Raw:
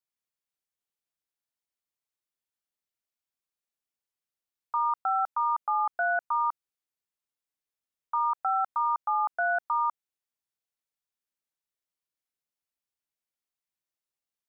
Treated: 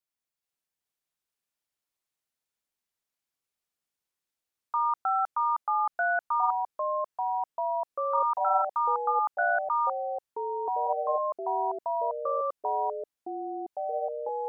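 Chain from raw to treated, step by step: echoes that change speed 0.428 s, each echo -4 st, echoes 3

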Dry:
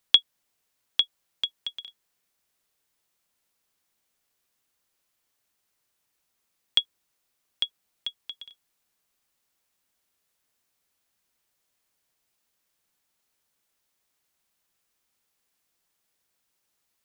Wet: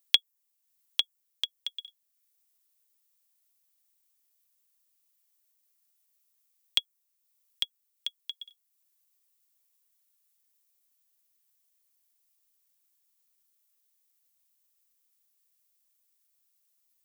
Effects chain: RIAA curve recording; notch 1500 Hz, Q 20; dynamic EQ 3600 Hz, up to -7 dB, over -30 dBFS, Q 1.5; transient shaper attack +8 dB, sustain -4 dB; gain -12 dB

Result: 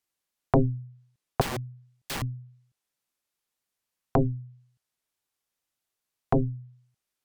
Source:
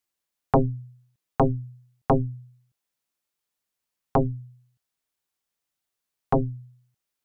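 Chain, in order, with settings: treble ducked by the level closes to 480 Hz, closed at -22.5 dBFS; 1.41–2.22 wrapped overs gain 27.5 dB

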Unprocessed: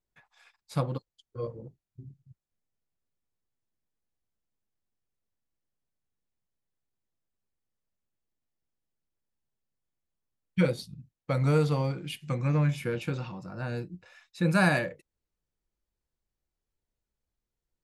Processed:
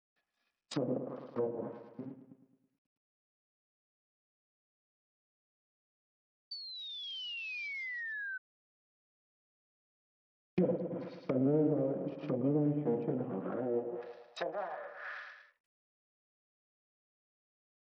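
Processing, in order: minimum comb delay 1.6 ms; gate -51 dBFS, range -26 dB; low shelf 140 Hz -9.5 dB; on a send: feedback echo 0.108 s, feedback 53%, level -11 dB; on the sum: dynamic EQ 1100 Hz, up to -6 dB, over -50 dBFS, Q 2.2; in parallel at +2.5 dB: compressor 6:1, threshold -39 dBFS, peak gain reduction 15.5 dB; on the sum: limiter -21 dBFS, peak gain reduction 7.5 dB; high-pass sweep 230 Hz -> 1400 Hz, 13.5–15.01; painted sound fall, 6.51–8.38, 1500–4600 Hz -39 dBFS; treble ducked by the level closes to 580 Hz, closed at -30.5 dBFS; gain -1 dB; SBC 64 kbps 44100 Hz

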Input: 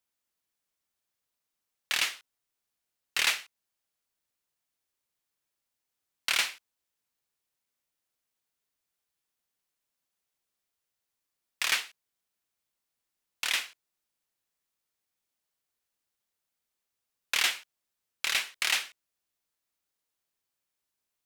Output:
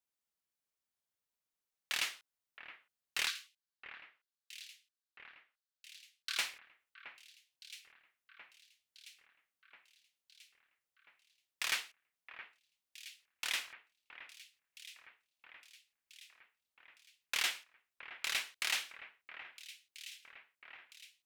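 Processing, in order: 3.27–6.38 rippled Chebyshev high-pass 1100 Hz, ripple 9 dB; echo with dull and thin repeats by turns 0.669 s, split 2400 Hz, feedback 76%, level -12 dB; gain -7.5 dB

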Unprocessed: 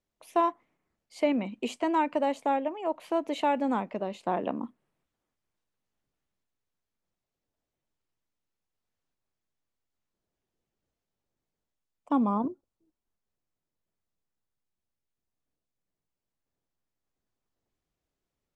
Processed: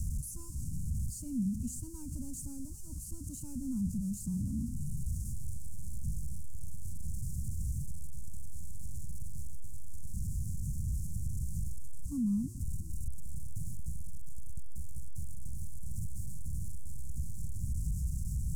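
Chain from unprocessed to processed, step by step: zero-crossing step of -32.5 dBFS; inverse Chebyshev band-stop 380–3700 Hz, stop band 50 dB; bell 65 Hz +9 dB 0.88 oct; limiter -36 dBFS, peak gain reduction 7 dB; air absorption 63 m; gain +12 dB

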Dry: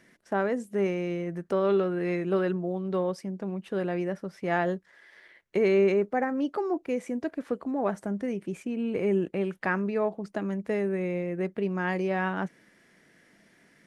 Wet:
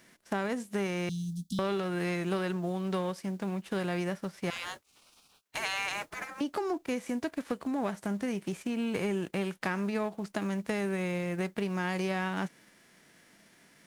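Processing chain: spectral whitening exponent 0.6; 1.09–1.59 Chebyshev band-stop 260–3400 Hz, order 5; 4.5–6.41 spectral gate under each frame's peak -15 dB weak; compressor, threshold -28 dBFS, peak gain reduction 8.5 dB

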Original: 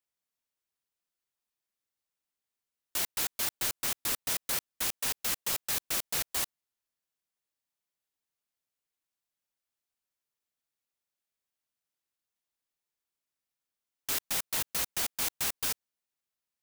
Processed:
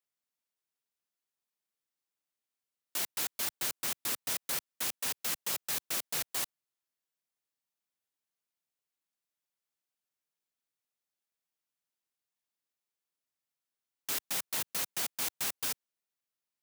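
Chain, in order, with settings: HPF 110 Hz 12 dB/oct; gain -2.5 dB

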